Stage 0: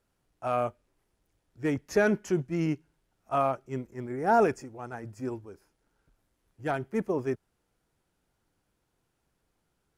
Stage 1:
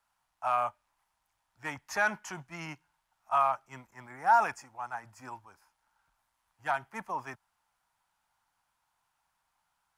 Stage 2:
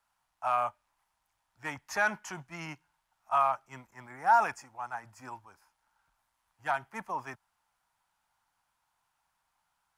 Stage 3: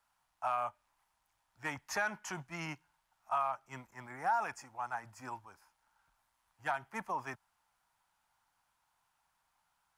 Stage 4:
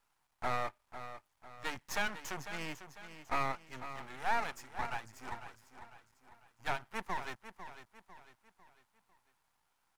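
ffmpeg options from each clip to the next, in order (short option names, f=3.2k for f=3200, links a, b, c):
-filter_complex "[0:a]lowshelf=f=610:t=q:w=3:g=-13.5,acrossover=split=160|850|3900[a][b][c][d];[b]alimiter=level_in=4dB:limit=-24dB:level=0:latency=1,volume=-4dB[e];[a][e][c][d]amix=inputs=4:normalize=0"
-af anull
-af "acompressor=threshold=-33dB:ratio=2.5"
-af "aecho=1:1:499|998|1497|1996:0.266|0.112|0.0469|0.0197,aeval=exprs='max(val(0),0)':c=same,volume=3.5dB"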